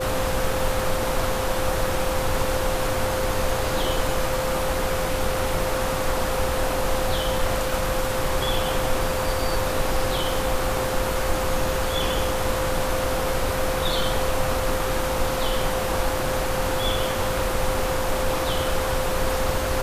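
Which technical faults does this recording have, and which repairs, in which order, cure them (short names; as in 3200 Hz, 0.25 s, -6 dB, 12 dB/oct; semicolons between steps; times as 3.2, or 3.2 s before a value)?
tone 520 Hz -27 dBFS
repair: notch 520 Hz, Q 30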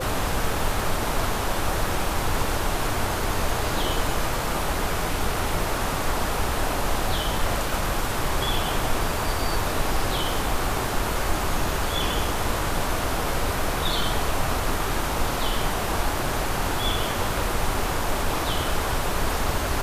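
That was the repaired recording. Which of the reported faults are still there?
none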